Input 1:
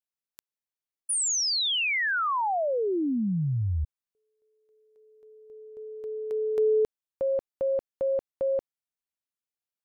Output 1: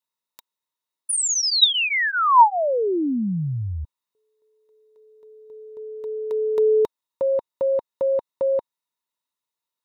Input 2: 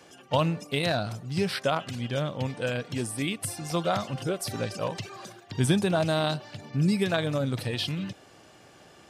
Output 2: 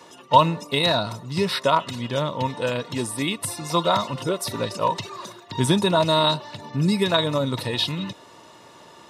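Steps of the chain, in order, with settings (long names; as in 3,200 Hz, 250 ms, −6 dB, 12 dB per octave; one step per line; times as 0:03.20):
low-shelf EQ 170 Hz −4.5 dB
notch comb filter 790 Hz
hollow resonant body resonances 940/3,800 Hz, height 14 dB, ringing for 25 ms
level +5.5 dB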